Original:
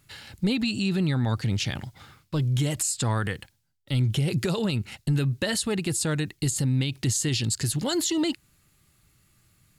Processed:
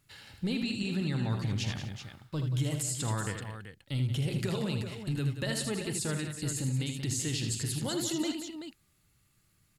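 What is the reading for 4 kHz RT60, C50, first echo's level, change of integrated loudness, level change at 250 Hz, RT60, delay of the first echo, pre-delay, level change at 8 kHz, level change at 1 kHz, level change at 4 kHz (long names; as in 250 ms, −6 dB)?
no reverb audible, no reverb audible, −14.0 dB, −6.5 dB, −6.5 dB, no reverb audible, 45 ms, no reverb audible, −6.5 dB, −6.5 dB, −6.5 dB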